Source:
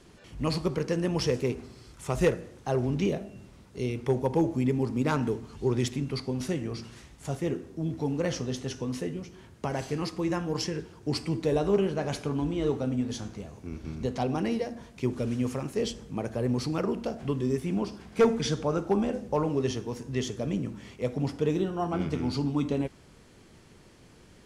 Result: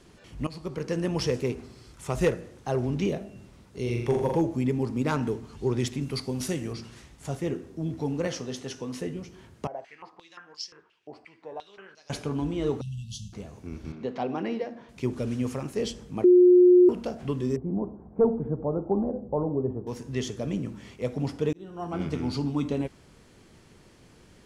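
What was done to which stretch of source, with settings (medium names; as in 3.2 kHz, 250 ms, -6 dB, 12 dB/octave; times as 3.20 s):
0.47–0.98 s: fade in, from -17.5 dB
3.82–4.37 s: flutter echo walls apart 7.3 m, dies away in 0.74 s
6.00–6.72 s: treble shelf 7.9 kHz -> 4.4 kHz +11.5 dB
8.27–9.01 s: high-pass 230 Hz 6 dB/octave
9.67–12.10 s: step-sequenced band-pass 5.7 Hz 660–4900 Hz
12.81–13.33 s: brick-wall FIR band-stop 210–2600 Hz
13.92–14.89 s: band-pass 220–3200 Hz
16.24–16.89 s: bleep 359 Hz -12 dBFS
17.56–19.87 s: inverse Chebyshev low-pass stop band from 5.1 kHz, stop band 80 dB
21.53–22.06 s: fade in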